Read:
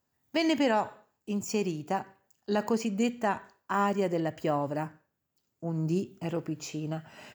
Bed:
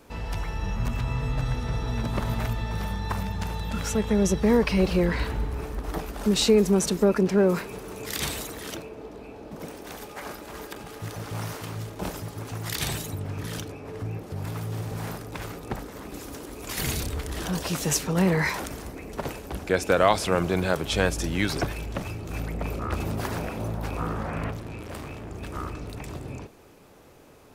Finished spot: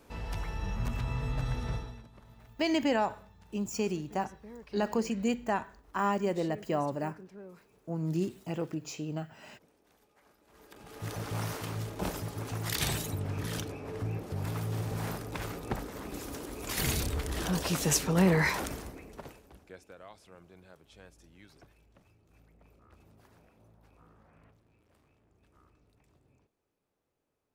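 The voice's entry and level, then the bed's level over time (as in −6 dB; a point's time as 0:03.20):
2.25 s, −2.0 dB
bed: 0:01.74 −5.5 dB
0:02.10 −28 dB
0:10.36 −28 dB
0:11.09 −2 dB
0:18.71 −2 dB
0:19.95 −31 dB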